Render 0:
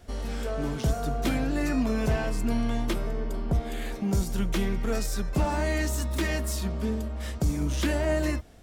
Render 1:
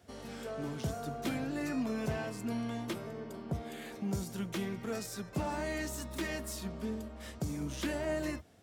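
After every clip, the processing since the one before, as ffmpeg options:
ffmpeg -i in.wav -af "highpass=frequency=84:width=0.5412,highpass=frequency=84:width=1.3066,volume=-7.5dB" out.wav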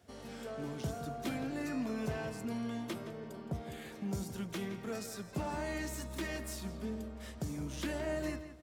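ffmpeg -i in.wav -filter_complex "[0:a]asplit=2[link_01][link_02];[link_02]adelay=168,lowpass=frequency=4200:poles=1,volume=-11dB,asplit=2[link_03][link_04];[link_04]adelay=168,lowpass=frequency=4200:poles=1,volume=0.28,asplit=2[link_05][link_06];[link_06]adelay=168,lowpass=frequency=4200:poles=1,volume=0.28[link_07];[link_01][link_03][link_05][link_07]amix=inputs=4:normalize=0,volume=-2.5dB" out.wav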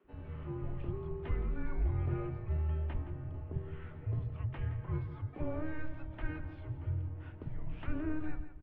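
ffmpeg -i in.wav -filter_complex "[0:a]tiltshelf=frequency=970:gain=8,highpass=frequency=200:width_type=q:width=0.5412,highpass=frequency=200:width_type=q:width=1.307,lowpass=frequency=3100:width_type=q:width=0.5176,lowpass=frequency=3100:width_type=q:width=0.7071,lowpass=frequency=3100:width_type=q:width=1.932,afreqshift=-310,acrossover=split=220[link_01][link_02];[link_01]adelay=40[link_03];[link_03][link_02]amix=inputs=2:normalize=0" out.wav

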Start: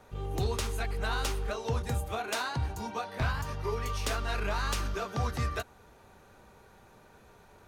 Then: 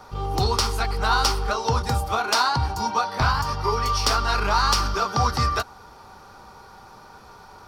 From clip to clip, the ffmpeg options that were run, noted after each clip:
ffmpeg -i in.wav -af "superequalizer=9b=2.51:10b=2.51:13b=1.41:14b=3.55,volume=7dB" out.wav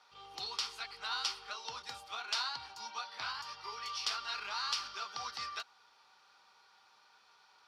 ffmpeg -i in.wav -af "bandpass=frequency=3200:width_type=q:width=1.4:csg=0,volume=-8dB" out.wav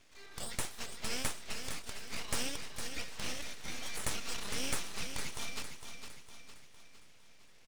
ffmpeg -i in.wav -af "aeval=exprs='abs(val(0))':channel_layout=same,aecho=1:1:458|916|1374|1832|2290|2748:0.398|0.191|0.0917|0.044|0.0211|0.0101,volume=2.5dB" out.wav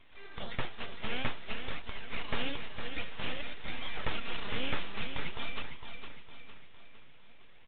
ffmpeg -i in.wav -af "flanger=delay=0.9:depth=9.5:regen=64:speed=0.52:shape=sinusoidal,volume=8dB" -ar 8000 -c:a pcm_alaw out.wav

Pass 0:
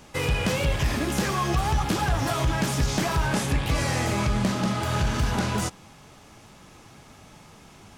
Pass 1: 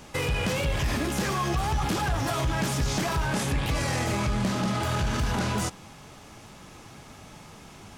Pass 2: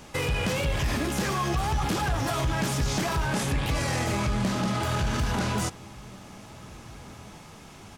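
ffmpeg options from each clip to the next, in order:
ffmpeg -i in.wav -af "alimiter=limit=-22dB:level=0:latency=1:release=21,volume=2.5dB" out.wav
ffmpeg -i in.wav -filter_complex "[0:a]asplit=2[link_01][link_02];[link_02]adelay=1691,volume=-20dB,highshelf=frequency=4000:gain=-38[link_03];[link_01][link_03]amix=inputs=2:normalize=0" out.wav

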